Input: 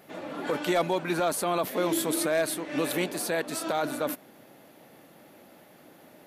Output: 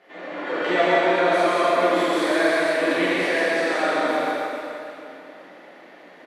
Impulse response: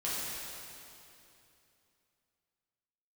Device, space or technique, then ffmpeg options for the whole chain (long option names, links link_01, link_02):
station announcement: -filter_complex "[0:a]highpass=330,lowpass=3900,equalizer=frequency=1900:width_type=o:width=0.43:gain=7,aecho=1:1:131.2|174.9:0.631|0.631[link_01];[1:a]atrim=start_sample=2205[link_02];[link_01][link_02]afir=irnorm=-1:irlink=0"